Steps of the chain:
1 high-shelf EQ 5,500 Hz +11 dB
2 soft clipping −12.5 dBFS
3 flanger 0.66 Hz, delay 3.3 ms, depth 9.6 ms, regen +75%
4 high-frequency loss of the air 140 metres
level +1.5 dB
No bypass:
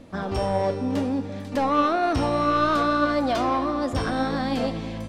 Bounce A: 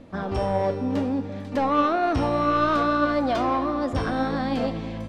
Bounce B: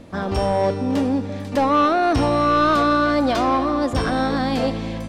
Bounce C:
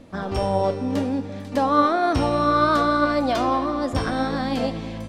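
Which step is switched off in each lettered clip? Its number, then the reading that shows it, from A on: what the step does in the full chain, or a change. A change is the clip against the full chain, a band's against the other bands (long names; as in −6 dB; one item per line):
1, 4 kHz band −3.0 dB
3, change in integrated loudness +4.5 LU
2, distortion level −16 dB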